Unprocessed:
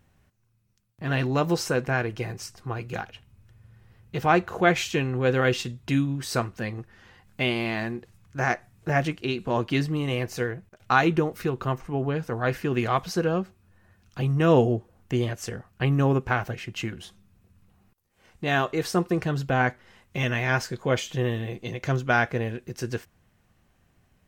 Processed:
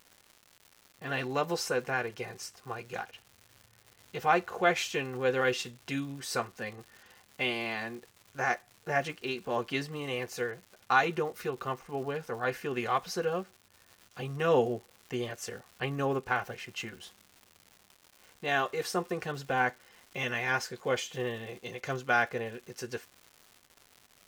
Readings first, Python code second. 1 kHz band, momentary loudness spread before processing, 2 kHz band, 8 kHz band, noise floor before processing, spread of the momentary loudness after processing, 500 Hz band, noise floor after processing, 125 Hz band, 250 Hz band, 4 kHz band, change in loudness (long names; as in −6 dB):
−4.0 dB, 12 LU, −4.0 dB, −3.5 dB, −66 dBFS, 14 LU, −5.5 dB, −64 dBFS, −14.5 dB, −11.0 dB, −4.0 dB, −6.0 dB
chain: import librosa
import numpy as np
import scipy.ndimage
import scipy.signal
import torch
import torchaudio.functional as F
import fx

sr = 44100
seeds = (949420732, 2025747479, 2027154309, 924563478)

y = fx.bass_treble(x, sr, bass_db=-13, treble_db=1)
y = fx.notch_comb(y, sr, f0_hz=320.0)
y = fx.dmg_crackle(y, sr, seeds[0], per_s=270.0, level_db=-40.0)
y = F.gain(torch.from_numpy(y), -3.0).numpy()